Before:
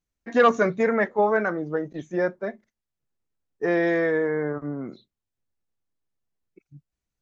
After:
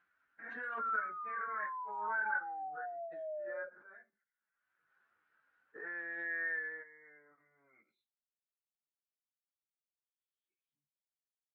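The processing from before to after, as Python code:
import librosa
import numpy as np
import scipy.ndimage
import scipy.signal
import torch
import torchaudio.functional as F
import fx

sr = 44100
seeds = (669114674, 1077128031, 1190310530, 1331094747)

y = scipy.signal.sosfilt(scipy.signal.butter(2, 42.0, 'highpass', fs=sr, output='sos'), x)
y = fx.level_steps(y, sr, step_db=12)
y = fx.filter_sweep_bandpass(y, sr, from_hz=1500.0, to_hz=3300.0, start_s=3.6, end_s=5.94, q=7.7)
y = fx.spec_paint(y, sr, seeds[0], shape='fall', start_s=0.49, length_s=1.81, low_hz=550.0, high_hz=1400.0, level_db=-41.0)
y = fx.stretch_vocoder_free(y, sr, factor=1.6)
y = fx.air_absorb(y, sr, metres=250.0)
y = fx.pre_swell(y, sr, db_per_s=33.0)
y = F.gain(torch.from_numpy(y), 1.0).numpy()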